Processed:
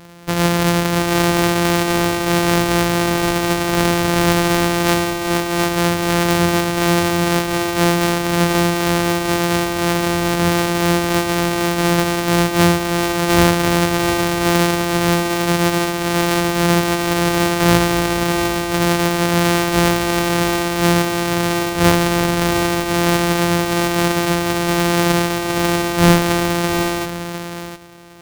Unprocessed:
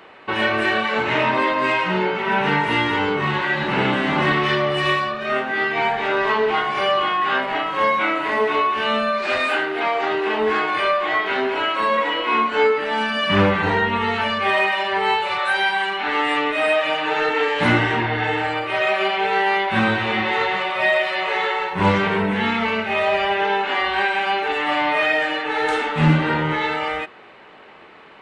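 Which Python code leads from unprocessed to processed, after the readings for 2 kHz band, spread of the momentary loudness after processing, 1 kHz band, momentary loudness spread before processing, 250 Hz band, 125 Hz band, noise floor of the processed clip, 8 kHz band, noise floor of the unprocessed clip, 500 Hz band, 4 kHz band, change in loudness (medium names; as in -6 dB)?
-1.5 dB, 4 LU, 0.0 dB, 3 LU, +9.0 dB, +9.0 dB, -25 dBFS, no reading, -42 dBFS, +3.0 dB, +3.5 dB, +3.0 dB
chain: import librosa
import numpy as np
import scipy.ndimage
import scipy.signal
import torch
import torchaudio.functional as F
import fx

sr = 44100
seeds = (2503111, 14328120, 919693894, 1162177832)

y = np.r_[np.sort(x[:len(x) // 256 * 256].reshape(-1, 256), axis=1).ravel(), x[len(x) // 256 * 256:]]
y = y + 10.0 ** (-8.5 / 20.0) * np.pad(y, (int(705 * sr / 1000.0), 0))[:len(y)]
y = y * 10.0 ** (4.0 / 20.0)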